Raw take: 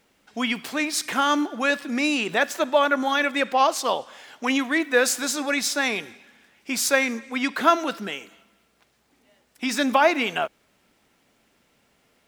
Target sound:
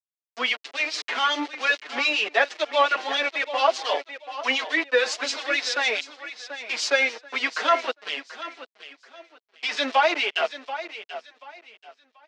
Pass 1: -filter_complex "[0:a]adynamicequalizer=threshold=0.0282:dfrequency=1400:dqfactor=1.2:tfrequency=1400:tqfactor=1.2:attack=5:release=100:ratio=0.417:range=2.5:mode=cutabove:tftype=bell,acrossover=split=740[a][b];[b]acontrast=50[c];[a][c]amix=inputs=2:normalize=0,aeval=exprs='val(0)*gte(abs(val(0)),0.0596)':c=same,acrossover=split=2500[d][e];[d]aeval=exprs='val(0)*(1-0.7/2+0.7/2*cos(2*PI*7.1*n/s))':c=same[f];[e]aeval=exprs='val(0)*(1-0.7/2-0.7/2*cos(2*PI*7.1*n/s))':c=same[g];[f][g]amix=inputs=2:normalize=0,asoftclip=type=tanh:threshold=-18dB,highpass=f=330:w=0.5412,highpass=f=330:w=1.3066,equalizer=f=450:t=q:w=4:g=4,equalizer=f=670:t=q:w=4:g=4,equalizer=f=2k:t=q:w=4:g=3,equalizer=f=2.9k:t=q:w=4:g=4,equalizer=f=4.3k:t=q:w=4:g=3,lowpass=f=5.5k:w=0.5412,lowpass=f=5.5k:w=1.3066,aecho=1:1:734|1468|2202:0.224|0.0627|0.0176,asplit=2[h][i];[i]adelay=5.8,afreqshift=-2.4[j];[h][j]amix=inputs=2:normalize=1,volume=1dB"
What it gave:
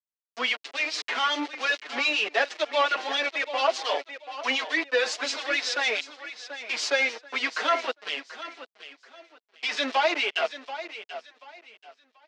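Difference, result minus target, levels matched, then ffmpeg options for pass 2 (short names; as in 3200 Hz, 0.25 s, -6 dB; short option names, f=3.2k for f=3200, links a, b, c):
soft clip: distortion +12 dB
-filter_complex "[0:a]adynamicequalizer=threshold=0.0282:dfrequency=1400:dqfactor=1.2:tfrequency=1400:tqfactor=1.2:attack=5:release=100:ratio=0.417:range=2.5:mode=cutabove:tftype=bell,acrossover=split=740[a][b];[b]acontrast=50[c];[a][c]amix=inputs=2:normalize=0,aeval=exprs='val(0)*gte(abs(val(0)),0.0596)':c=same,acrossover=split=2500[d][e];[d]aeval=exprs='val(0)*(1-0.7/2+0.7/2*cos(2*PI*7.1*n/s))':c=same[f];[e]aeval=exprs='val(0)*(1-0.7/2-0.7/2*cos(2*PI*7.1*n/s))':c=same[g];[f][g]amix=inputs=2:normalize=0,asoftclip=type=tanh:threshold=-8.5dB,highpass=f=330:w=0.5412,highpass=f=330:w=1.3066,equalizer=f=450:t=q:w=4:g=4,equalizer=f=670:t=q:w=4:g=4,equalizer=f=2k:t=q:w=4:g=3,equalizer=f=2.9k:t=q:w=4:g=4,equalizer=f=4.3k:t=q:w=4:g=3,lowpass=f=5.5k:w=0.5412,lowpass=f=5.5k:w=1.3066,aecho=1:1:734|1468|2202:0.224|0.0627|0.0176,asplit=2[h][i];[i]adelay=5.8,afreqshift=-2.4[j];[h][j]amix=inputs=2:normalize=1,volume=1dB"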